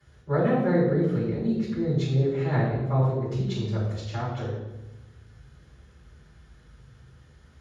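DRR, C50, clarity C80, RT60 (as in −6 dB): −11.5 dB, 2.0 dB, 4.0 dB, 1.1 s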